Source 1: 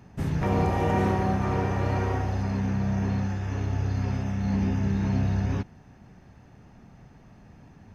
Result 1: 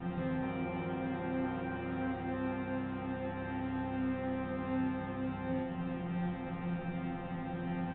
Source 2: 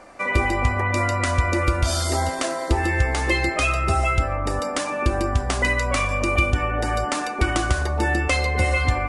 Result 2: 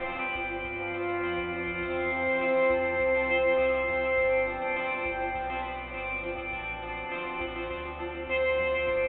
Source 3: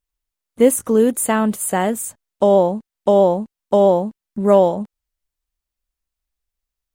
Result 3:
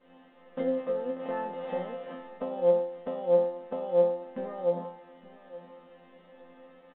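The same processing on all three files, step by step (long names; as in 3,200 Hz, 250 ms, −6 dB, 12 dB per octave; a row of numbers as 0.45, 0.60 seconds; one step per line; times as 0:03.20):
compressor on every frequency bin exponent 0.4
downward expander −33 dBFS
high-shelf EQ 3,100 Hz −2.5 dB
harmonic and percussive parts rebalanced harmonic +8 dB
dynamic equaliser 550 Hz, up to +6 dB, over −18 dBFS, Q 1.3
downward compressor 10 to 1, threshold −19 dBFS
resonators tuned to a chord F3 fifth, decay 0.64 s
repeating echo 869 ms, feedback 26%, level −17 dB
level +8.5 dB
mu-law 64 kbit/s 8,000 Hz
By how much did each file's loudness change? −10.5, −7.0, −13.0 LU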